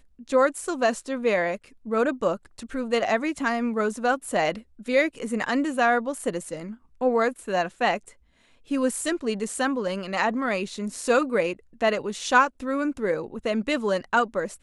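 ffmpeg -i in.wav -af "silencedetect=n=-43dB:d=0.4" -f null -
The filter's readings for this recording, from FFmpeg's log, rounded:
silence_start: 8.11
silence_end: 8.69 | silence_duration: 0.58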